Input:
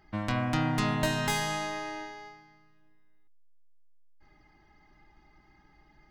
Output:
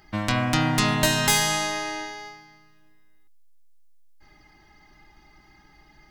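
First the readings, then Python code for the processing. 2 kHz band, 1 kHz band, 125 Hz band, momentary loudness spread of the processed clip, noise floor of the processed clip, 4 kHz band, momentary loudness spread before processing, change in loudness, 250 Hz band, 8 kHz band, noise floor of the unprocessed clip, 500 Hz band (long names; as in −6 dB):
+8.0 dB, +6.0 dB, +5.0 dB, 14 LU, −56 dBFS, +11.0 dB, 13 LU, +7.5 dB, +5.0 dB, +14.0 dB, −62 dBFS, +5.5 dB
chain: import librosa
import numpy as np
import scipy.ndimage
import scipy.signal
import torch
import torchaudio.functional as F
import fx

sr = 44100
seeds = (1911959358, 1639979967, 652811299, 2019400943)

y = fx.high_shelf(x, sr, hz=3000.0, db=10.5)
y = y * librosa.db_to_amplitude(5.0)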